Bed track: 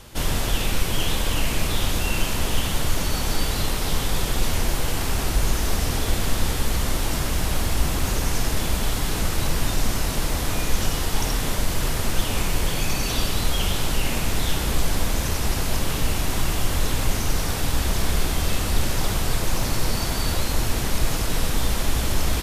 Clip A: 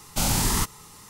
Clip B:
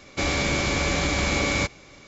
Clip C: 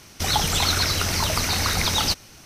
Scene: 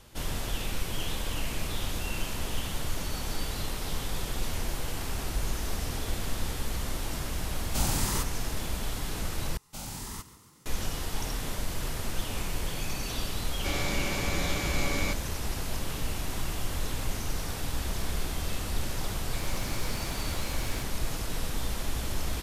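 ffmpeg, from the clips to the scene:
-filter_complex "[1:a]asplit=2[s0][s1];[2:a]asplit=2[s2][s3];[0:a]volume=0.335[s4];[s1]asplit=7[s5][s6][s7][s8][s9][s10][s11];[s6]adelay=139,afreqshift=34,volume=0.168[s12];[s7]adelay=278,afreqshift=68,volume=0.0989[s13];[s8]adelay=417,afreqshift=102,volume=0.0582[s14];[s9]adelay=556,afreqshift=136,volume=0.0347[s15];[s10]adelay=695,afreqshift=170,volume=0.0204[s16];[s11]adelay=834,afreqshift=204,volume=0.012[s17];[s5][s12][s13][s14][s15][s16][s17]amix=inputs=7:normalize=0[s18];[s3]aeval=exprs='0.0708*(abs(mod(val(0)/0.0708+3,4)-2)-1)':c=same[s19];[s4]asplit=2[s20][s21];[s20]atrim=end=9.574[s22];[s18]atrim=end=1.09,asetpts=PTS-STARTPTS,volume=0.158[s23];[s21]atrim=start=10.656[s24];[s0]atrim=end=1.09,asetpts=PTS-STARTPTS,volume=0.447,afade=t=in:d=0.004:c=hsin,afade=t=out:st=1.086:d=0.004:c=hsin,adelay=7580[s25];[s2]atrim=end=2.07,asetpts=PTS-STARTPTS,volume=0.376,afade=t=in:d=0.004:c=hsin,afade=t=out:st=2.066:d=0.004:c=hsin,adelay=13470[s26];[s19]atrim=end=2.07,asetpts=PTS-STARTPTS,volume=0.2,afade=t=in:d=0.004:c=hsin,afade=t=out:st=2.066:d=0.004:c=hsin,adelay=19160[s27];[s22][s23]acrossfade=d=0.004:c1=hsin:c2=hsin[s28];[s28][s24]acrossfade=d=0.004:c1=hsin:c2=hsin[s29];[s29][s25][s26][s27]amix=inputs=4:normalize=0"

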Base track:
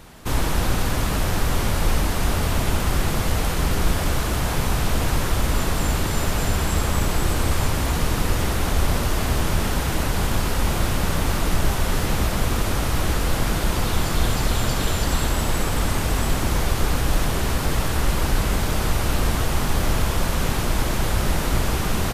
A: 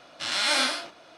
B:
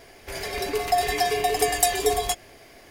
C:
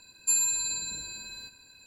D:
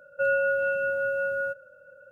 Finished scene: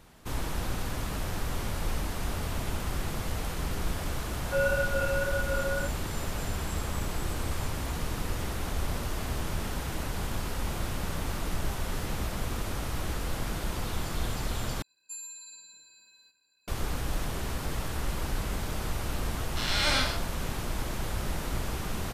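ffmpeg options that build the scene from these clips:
-filter_complex "[0:a]volume=0.282[s0];[4:a]flanger=delay=22.5:depth=5:speed=1.8[s1];[3:a]highpass=f=530:p=1[s2];[1:a]equalizer=f=13000:t=o:w=0.77:g=-8.5[s3];[s0]asplit=2[s4][s5];[s4]atrim=end=14.824[s6];[s2]atrim=end=1.86,asetpts=PTS-STARTPTS,volume=0.15[s7];[s5]atrim=start=16.676[s8];[s1]atrim=end=2.11,asetpts=PTS-STARTPTS,volume=0.891,afade=t=in:d=0.004:c=hsin,afade=t=out:st=2.106:d=0.004:c=hsin,adelay=190953S[s9];[s3]atrim=end=1.17,asetpts=PTS-STARTPTS,volume=0.708,afade=t=in:d=0.004:c=hsin,afade=t=out:st=1.166:d=0.004:c=hsin,adelay=19360[s10];[s6][s7]acrossfade=d=0.004:c1=hsin:c2=hsin[s11];[s11][s8]acrossfade=d=0.004:c1=hsin:c2=hsin[s12];[s12][s9][s10]amix=inputs=3:normalize=0"

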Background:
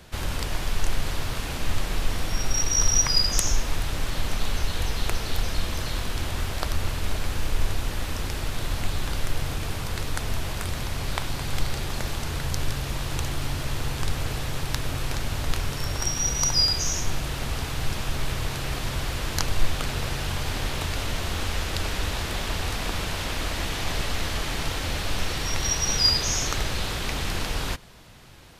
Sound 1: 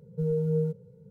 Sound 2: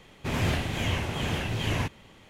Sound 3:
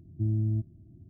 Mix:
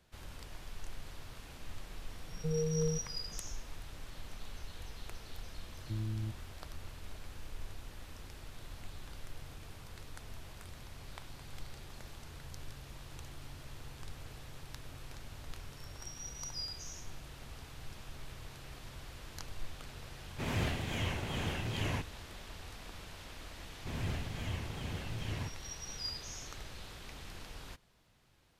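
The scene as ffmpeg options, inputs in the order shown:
-filter_complex "[2:a]asplit=2[s0][s1];[0:a]volume=0.1[s2];[s1]lowshelf=f=160:g=8[s3];[1:a]atrim=end=1.1,asetpts=PTS-STARTPTS,volume=0.473,afade=t=in:d=0.004:c=hsin,afade=t=out:st=1.096:d=0.004:c=hsin,adelay=2260[s4];[3:a]atrim=end=1.09,asetpts=PTS-STARTPTS,volume=0.316,afade=t=in:d=0.004:c=hsin,afade=t=out:st=1.086:d=0.004:c=hsin,adelay=5700[s5];[s0]atrim=end=2.29,asetpts=PTS-STARTPTS,volume=0.422,afade=t=in:d=0.004:c=hsin,afade=t=out:st=2.286:d=0.004:c=hsin,adelay=20140[s6];[s3]atrim=end=2.29,asetpts=PTS-STARTPTS,volume=0.178,afade=t=in:d=0.004:c=hsin,afade=t=out:st=2.286:d=0.004:c=hsin,adelay=23610[s7];[s2][s4][s5][s6][s7]amix=inputs=5:normalize=0"

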